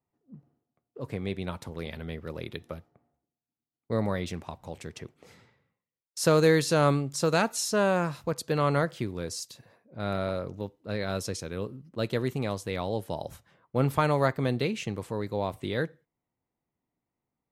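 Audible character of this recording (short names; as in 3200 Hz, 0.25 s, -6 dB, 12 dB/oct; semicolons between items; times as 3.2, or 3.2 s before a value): noise floor -91 dBFS; spectral tilt -5.5 dB/oct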